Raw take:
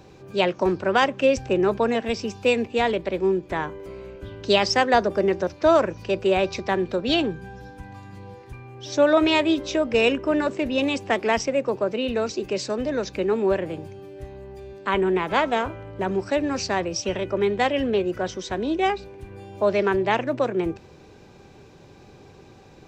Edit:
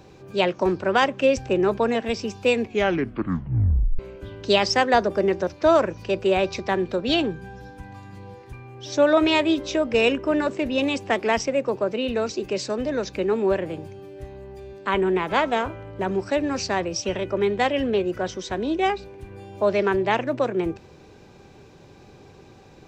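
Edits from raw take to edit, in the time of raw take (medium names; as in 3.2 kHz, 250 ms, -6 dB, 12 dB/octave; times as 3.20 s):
2.62 s: tape stop 1.37 s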